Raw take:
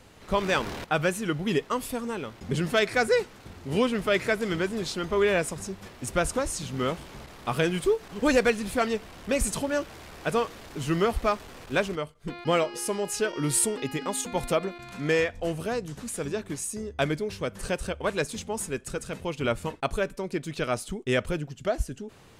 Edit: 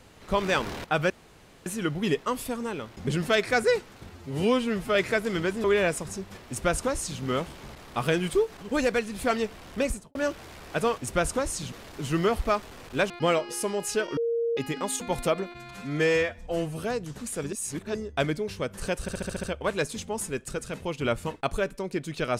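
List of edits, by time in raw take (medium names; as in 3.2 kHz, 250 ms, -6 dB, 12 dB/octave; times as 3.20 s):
1.10 s: insert room tone 0.56 s
3.55–4.11 s: stretch 1.5×
4.80–5.15 s: delete
5.98–6.72 s: copy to 10.49 s
8.13–8.70 s: gain -3.5 dB
9.28–9.66 s: studio fade out
11.87–12.35 s: delete
13.42–13.82 s: bleep 465 Hz -23.5 dBFS
14.77–15.64 s: stretch 1.5×
16.34–16.76 s: reverse
17.83 s: stutter 0.07 s, 7 plays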